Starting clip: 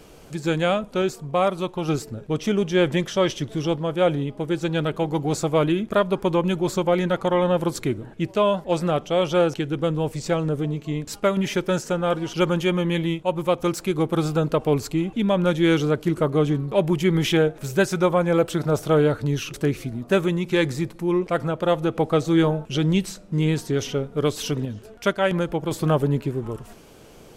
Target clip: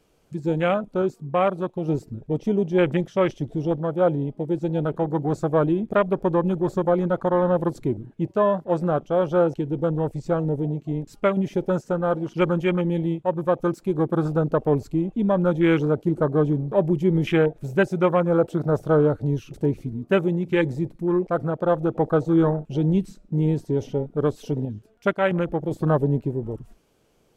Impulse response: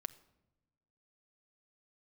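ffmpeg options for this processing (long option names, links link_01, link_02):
-af "afwtdn=0.0398"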